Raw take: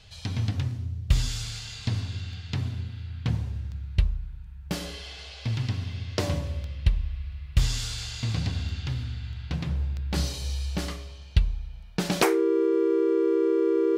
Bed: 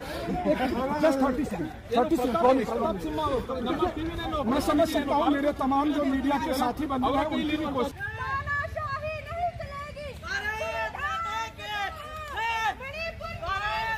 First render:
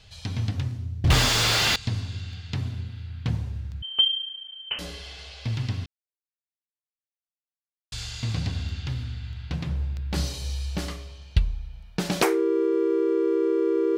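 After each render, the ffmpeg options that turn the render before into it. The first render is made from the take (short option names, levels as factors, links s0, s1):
-filter_complex "[0:a]asettb=1/sr,asplit=3[s0][s1][s2];[s0]atrim=end=1.044[s3];[s1]atrim=start=1.04:end=1.76,asetpts=PTS-STARTPTS,afade=t=in:d=0.004:c=qsin,afade=t=out:st=0.716:d=0.004:c=qsin,asplit=2[s4][s5];[s5]highpass=f=720:p=1,volume=200,asoftclip=type=tanh:threshold=0.398[s6];[s4][s6]amix=inputs=2:normalize=0,lowpass=f=1700:p=1,volume=0.501[s7];[s2]atrim=start=1.756[s8];[s3][s7]acrossfade=d=0.004:c1=hsin:c2=qsin[s9];[s9][s8]acrossfade=d=0.004:c1=qsin:c2=hsin,asettb=1/sr,asplit=3[s10][s11][s12];[s10]atrim=end=3.824[s13];[s11]atrim=start=3.82:end=4.79,asetpts=PTS-STARTPTS,afade=t=in:d=0.004:c=qsin,afade=t=out:st=0.966:d=0.004:c=qsin,lowpass=f=2700:t=q:w=0.5098,lowpass=f=2700:t=q:w=0.6013,lowpass=f=2700:t=q:w=0.9,lowpass=f=2700:t=q:w=2.563,afreqshift=-3200[s14];[s12]atrim=start=4.786[s15];[s13][s14]acrossfade=d=0.004:c1=hsin:c2=qsin[s16];[s16][s15]acrossfade=d=0.004:c1=qsin:c2=hsin,asplit=3[s17][s18][s19];[s17]atrim=end=5.86,asetpts=PTS-STARTPTS,afade=t=out:st=5.856:d=0.004:c=hsin[s20];[s18]atrim=start=5.86:end=7.92,asetpts=PTS-STARTPTS,volume=0[s21];[s19]atrim=start=7.92,asetpts=PTS-STARTPTS,afade=t=in:d=0.004:c=hsin[s22];[s20][s21][s22]concat=n=3:v=0:a=1"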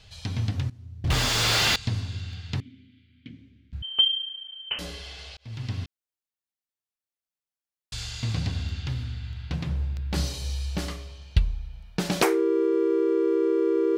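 -filter_complex "[0:a]asettb=1/sr,asplit=3[s0][s1][s2];[s0]atrim=end=2.604[s3];[s1]atrim=start=2.6:end=3.73,asetpts=PTS-STARTPTS,afade=t=in:d=0.004:c=qsin,afade=t=out:st=1.126:d=0.004:c=qsin,asplit=3[s4][s5][s6];[s4]bandpass=f=270:t=q:w=8,volume=1[s7];[s5]bandpass=f=2290:t=q:w=8,volume=0.501[s8];[s6]bandpass=f=3010:t=q:w=8,volume=0.355[s9];[s7][s8][s9]amix=inputs=3:normalize=0[s10];[s2]atrim=start=3.726[s11];[s3][s10]acrossfade=d=0.004:c1=hsin:c2=qsin[s12];[s12][s11]acrossfade=d=0.004:c1=qsin:c2=hsin,asplit=3[s13][s14][s15];[s13]atrim=end=0.7,asetpts=PTS-STARTPTS,afade=t=out:st=0.696:d=0.004:c=hsin:silence=0.141254[s16];[s14]atrim=start=0.7:end=5.37,asetpts=PTS-STARTPTS,afade=t=in:d=0.87:silence=0.141254,afade=t=out:st=4.666:d=0.004:c=hsin[s17];[s15]atrim=start=5.37,asetpts=PTS-STARTPTS,afade=t=in:d=0.45[s18];[s16][s17][s18]concat=n=3:v=0:a=1"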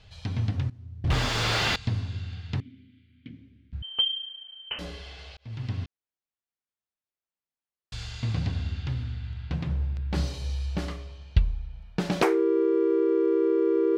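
-af "lowpass=f=2400:p=1"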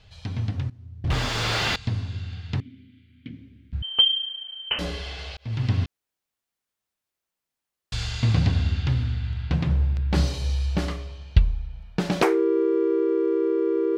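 -af "dynaudnorm=f=630:g=11:m=2.82"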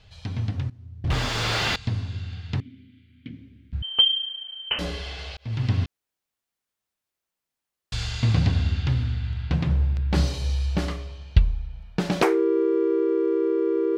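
-af anull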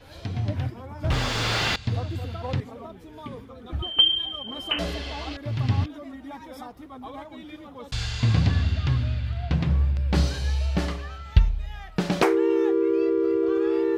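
-filter_complex "[1:a]volume=0.211[s0];[0:a][s0]amix=inputs=2:normalize=0"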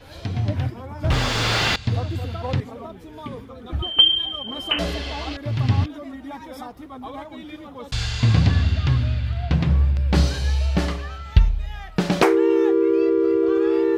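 -af "volume=1.58,alimiter=limit=0.794:level=0:latency=1"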